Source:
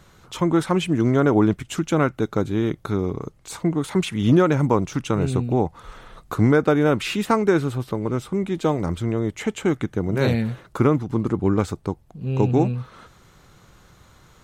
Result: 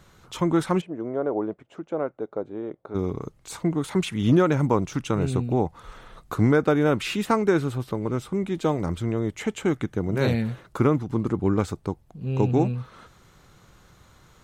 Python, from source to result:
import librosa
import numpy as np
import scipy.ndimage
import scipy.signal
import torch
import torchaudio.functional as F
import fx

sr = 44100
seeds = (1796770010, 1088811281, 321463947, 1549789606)

y = fx.bandpass_q(x, sr, hz=570.0, q=1.9, at=(0.8, 2.94), fade=0.02)
y = y * librosa.db_to_amplitude(-2.5)